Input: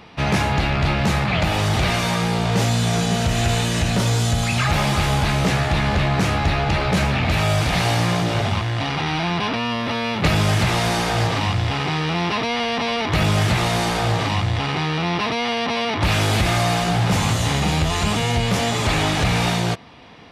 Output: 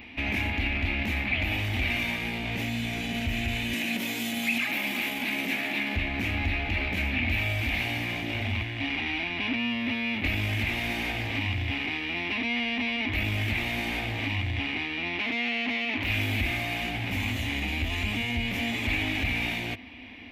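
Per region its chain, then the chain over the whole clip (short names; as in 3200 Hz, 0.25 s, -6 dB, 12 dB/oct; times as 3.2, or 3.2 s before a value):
3.73–5.96 steep high-pass 160 Hz + high shelf 8300 Hz +10 dB
15.18–16.09 HPF 170 Hz 6 dB/oct + Doppler distortion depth 0.42 ms
whole clip: limiter -19 dBFS; EQ curve 100 Hz 0 dB, 150 Hz -22 dB, 250 Hz +6 dB, 450 Hz -11 dB, 730 Hz -7 dB, 1300 Hz -14 dB, 2300 Hz +8 dB, 4700 Hz -11 dB, 9500 Hz -12 dB, 14000 Hz +5 dB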